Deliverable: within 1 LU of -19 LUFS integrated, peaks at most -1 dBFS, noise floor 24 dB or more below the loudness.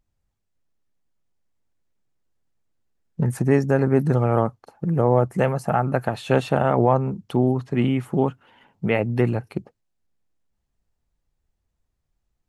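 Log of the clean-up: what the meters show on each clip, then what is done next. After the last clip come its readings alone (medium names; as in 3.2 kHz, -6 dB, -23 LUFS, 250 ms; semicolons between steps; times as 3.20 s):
loudness -22.0 LUFS; peak level -4.5 dBFS; loudness target -19.0 LUFS
-> trim +3 dB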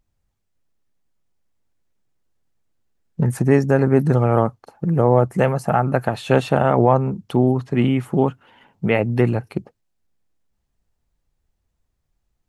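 loudness -19.0 LUFS; peak level -1.5 dBFS; noise floor -74 dBFS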